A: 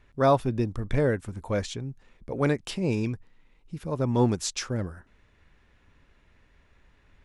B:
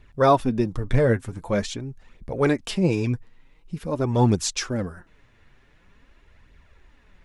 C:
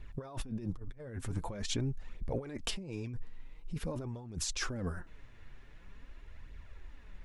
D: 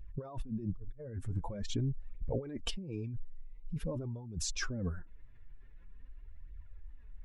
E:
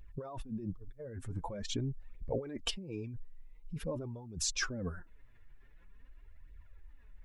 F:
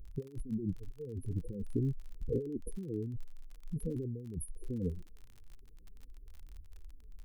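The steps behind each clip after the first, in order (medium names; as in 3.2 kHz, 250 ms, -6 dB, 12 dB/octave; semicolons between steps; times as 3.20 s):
flange 0.46 Hz, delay 0.2 ms, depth 8.8 ms, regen +31%; trim +8 dB
bass shelf 64 Hz +10 dB; compressor with a negative ratio -30 dBFS, ratio -1; trim -9 dB
spectral contrast enhancement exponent 1.5; trim +1 dB
bass shelf 250 Hz -9 dB; trim +3.5 dB
brick-wall FIR band-stop 510–9300 Hz; crackle 39 per s -48 dBFS; trim +3.5 dB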